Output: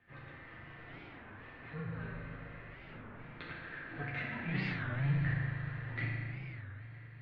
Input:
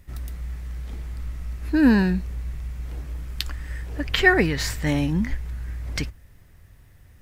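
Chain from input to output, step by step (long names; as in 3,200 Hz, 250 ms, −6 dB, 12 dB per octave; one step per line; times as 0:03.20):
lower of the sound and its delayed copy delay 0.47 ms
low-shelf EQ 260 Hz −7 dB
compressor whose output falls as the input rises −31 dBFS, ratio −1
0:00.45–0:01.62: floating-point word with a short mantissa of 2 bits
multi-voice chorus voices 6, 0.65 Hz, delay 12 ms, depth 4.5 ms
convolution reverb RT60 2.4 s, pre-delay 4 ms, DRR −4.5 dB
single-sideband voice off tune −150 Hz 220–3,100 Hz
feedback delay with all-pass diffusion 555 ms, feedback 54%, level −13 dB
wow of a warped record 33 1/3 rpm, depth 250 cents
level −6 dB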